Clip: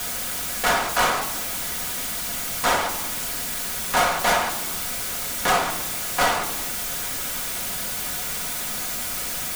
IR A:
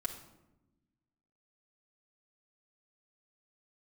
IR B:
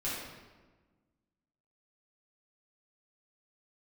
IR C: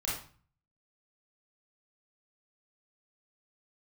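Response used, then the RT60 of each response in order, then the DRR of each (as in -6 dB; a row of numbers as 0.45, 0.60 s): A; 0.95, 1.3, 0.40 s; -1.5, -10.0, -6.5 dB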